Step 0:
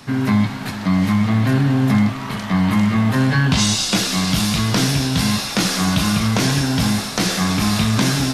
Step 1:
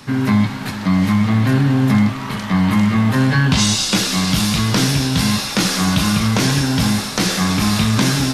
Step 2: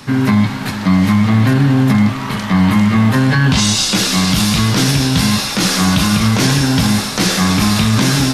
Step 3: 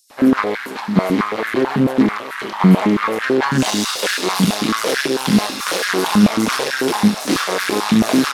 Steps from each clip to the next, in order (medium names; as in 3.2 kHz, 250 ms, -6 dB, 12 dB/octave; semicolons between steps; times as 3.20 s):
band-stop 690 Hz, Q 12; trim +1.5 dB
loudness maximiser +6.5 dB; trim -2.5 dB
bands offset in time highs, lows 100 ms, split 6 kHz; Chebyshev shaper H 4 -11 dB, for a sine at -2 dBFS; step-sequenced high-pass 9.1 Hz 200–1600 Hz; trim -7 dB